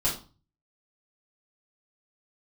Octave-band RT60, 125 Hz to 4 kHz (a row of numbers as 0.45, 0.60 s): 0.65, 0.45, 0.35, 0.35, 0.30, 0.30 s